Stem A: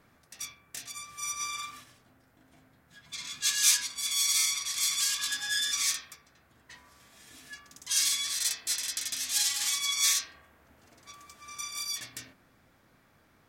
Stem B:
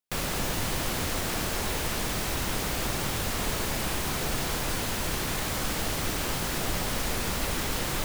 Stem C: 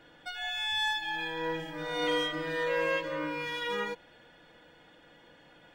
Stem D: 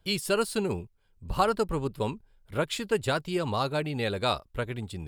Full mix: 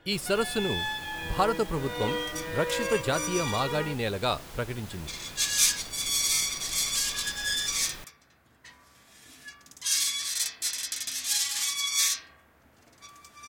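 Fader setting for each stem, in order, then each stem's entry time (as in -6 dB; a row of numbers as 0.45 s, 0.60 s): +0.5 dB, -15.5 dB, -2.0 dB, -0.5 dB; 1.95 s, 0.00 s, 0.00 s, 0.00 s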